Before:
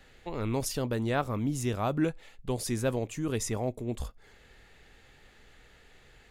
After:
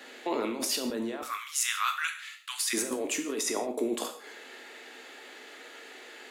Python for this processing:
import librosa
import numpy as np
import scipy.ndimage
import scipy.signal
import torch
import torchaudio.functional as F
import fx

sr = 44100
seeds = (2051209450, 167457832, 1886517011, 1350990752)

y = fx.steep_highpass(x, sr, hz=fx.steps((0.0, 230.0), (1.21, 1200.0), (2.73, 250.0)), slope=48)
y = fx.over_compress(y, sr, threshold_db=-39.0, ratio=-1.0)
y = fx.rev_gated(y, sr, seeds[0], gate_ms=190, shape='falling', drr_db=4.5)
y = F.gain(torch.from_numpy(y), 6.5).numpy()